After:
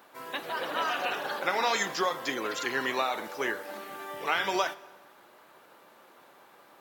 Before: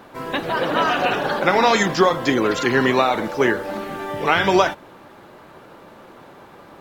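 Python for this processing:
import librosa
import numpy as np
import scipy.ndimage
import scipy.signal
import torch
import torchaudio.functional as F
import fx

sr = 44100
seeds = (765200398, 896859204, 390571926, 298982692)

y = fx.highpass(x, sr, hz=730.0, slope=6)
y = fx.high_shelf(y, sr, hz=9500.0, db=11.0)
y = fx.rev_plate(y, sr, seeds[0], rt60_s=1.5, hf_ratio=0.75, predelay_ms=0, drr_db=17.5)
y = F.gain(torch.from_numpy(y), -9.0).numpy()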